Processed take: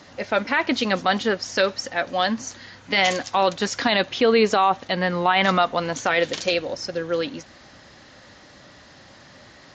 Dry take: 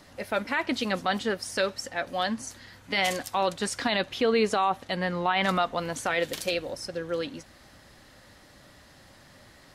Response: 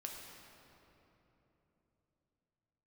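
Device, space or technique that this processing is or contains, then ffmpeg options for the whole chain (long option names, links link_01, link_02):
Bluetooth headset: -af "highpass=frequency=110:poles=1,aresample=16000,aresample=44100,volume=6.5dB" -ar 16000 -c:a sbc -b:a 64k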